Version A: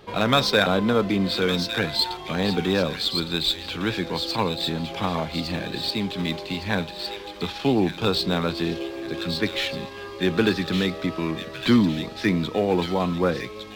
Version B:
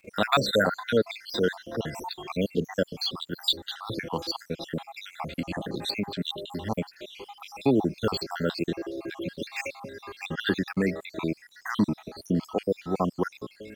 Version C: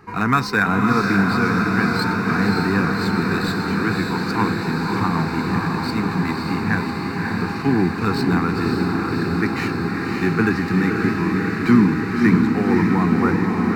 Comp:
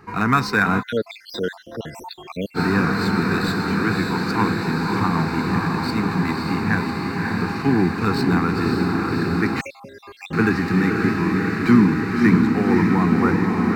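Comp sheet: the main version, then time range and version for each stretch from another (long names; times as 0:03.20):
C
0:00.80–0:02.57: punch in from B, crossfade 0.06 s
0:09.61–0:10.33: punch in from B
not used: A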